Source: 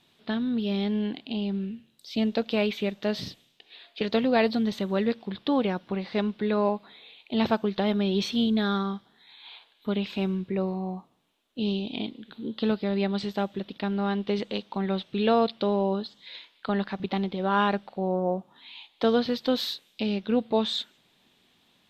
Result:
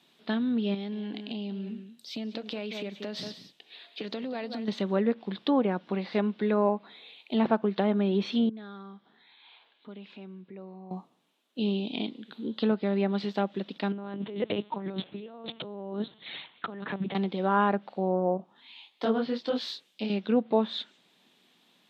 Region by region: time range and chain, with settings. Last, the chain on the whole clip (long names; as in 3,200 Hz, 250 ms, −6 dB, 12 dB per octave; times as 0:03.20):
0:00.74–0:04.68: single-tap delay 182 ms −13 dB + downward compressor 10 to 1, threshold −31 dBFS
0:08.49–0:10.91: downward compressor 2 to 1, threshold −54 dBFS + band-pass filter 100–3,200 Hz
0:13.92–0:17.15: spectral tilt −1.5 dB per octave + compressor whose output falls as the input rises −29 dBFS, ratio −0.5 + linear-prediction vocoder at 8 kHz pitch kept
0:18.37–0:20.10: notch filter 3,900 Hz, Q 25 + micro pitch shift up and down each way 52 cents
whole clip: high-pass filter 160 Hz 24 dB per octave; treble cut that deepens with the level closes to 1,700 Hz, closed at −21 dBFS